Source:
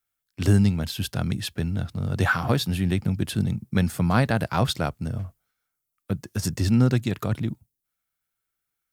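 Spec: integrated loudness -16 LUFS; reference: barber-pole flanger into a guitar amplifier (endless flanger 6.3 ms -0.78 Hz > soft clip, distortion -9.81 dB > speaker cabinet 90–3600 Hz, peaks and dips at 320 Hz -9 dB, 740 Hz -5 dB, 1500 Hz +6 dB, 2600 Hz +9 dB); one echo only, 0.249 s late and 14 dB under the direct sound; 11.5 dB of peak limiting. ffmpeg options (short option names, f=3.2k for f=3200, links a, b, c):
-filter_complex "[0:a]alimiter=limit=-17dB:level=0:latency=1,aecho=1:1:249:0.2,asplit=2[a][b];[b]adelay=6.3,afreqshift=-0.78[c];[a][c]amix=inputs=2:normalize=1,asoftclip=threshold=-29.5dB,highpass=90,equalizer=f=320:t=q:w=4:g=-9,equalizer=f=740:t=q:w=4:g=-5,equalizer=f=1.5k:t=q:w=4:g=6,equalizer=f=2.6k:t=q:w=4:g=9,lowpass=f=3.6k:w=0.5412,lowpass=f=3.6k:w=1.3066,volume=20.5dB"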